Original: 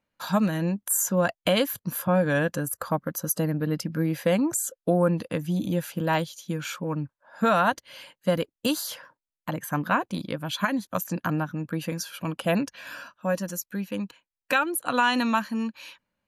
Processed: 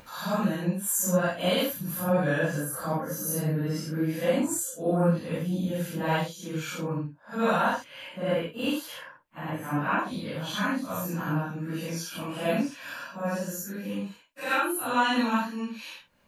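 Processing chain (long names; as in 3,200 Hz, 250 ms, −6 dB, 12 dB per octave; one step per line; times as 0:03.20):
random phases in long frames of 200 ms
0:07.84–0:09.99: high shelf with overshoot 3,500 Hz −7.5 dB, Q 1.5
upward compression, threshold −29 dBFS
level −2 dB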